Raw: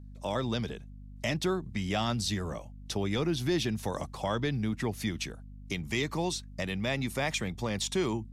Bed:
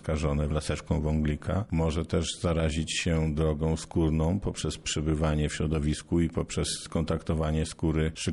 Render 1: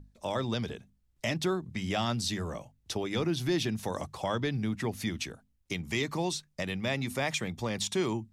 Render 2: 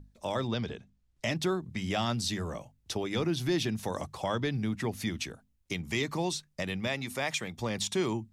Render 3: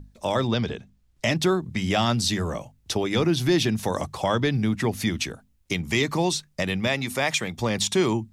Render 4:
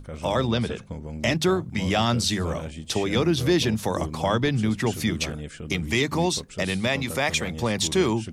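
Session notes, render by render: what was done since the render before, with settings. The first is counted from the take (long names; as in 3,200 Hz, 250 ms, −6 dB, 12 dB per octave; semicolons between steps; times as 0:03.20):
mains-hum notches 50/100/150/200/250 Hz
0:00.47–0:01.28: low-pass filter 4,500 Hz → 10,000 Hz; 0:06.87–0:07.59: low-shelf EQ 350 Hz −6.5 dB
level +8 dB
mix in bed −8 dB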